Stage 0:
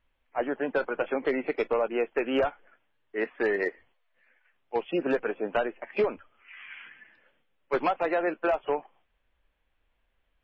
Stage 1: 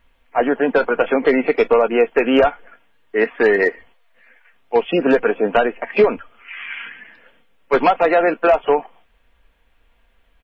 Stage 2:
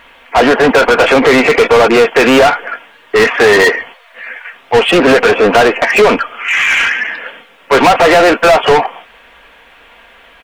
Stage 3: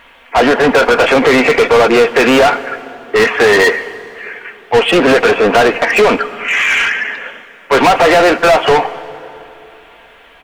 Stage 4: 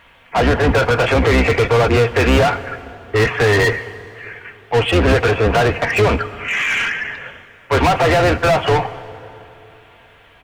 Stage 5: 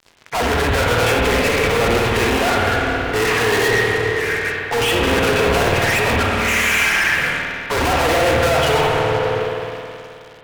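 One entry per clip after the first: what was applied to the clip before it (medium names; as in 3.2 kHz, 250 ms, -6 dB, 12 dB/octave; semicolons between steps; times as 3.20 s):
comb 4.3 ms, depth 32%; in parallel at -2.5 dB: peak limiter -25.5 dBFS, peak gain reduction 9.5 dB; on the sum: trim +9 dB
overdrive pedal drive 29 dB, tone 3.8 kHz, clips at -4.5 dBFS; trim +3.5 dB
plate-style reverb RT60 3.3 s, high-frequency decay 0.65×, DRR 15 dB; trim -1.5 dB
octave divider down 2 oct, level +4 dB; trim -6 dB
fuzz box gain 33 dB, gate -42 dBFS; spring tank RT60 2.4 s, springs 53 ms, chirp 60 ms, DRR -1 dB; trim -5.5 dB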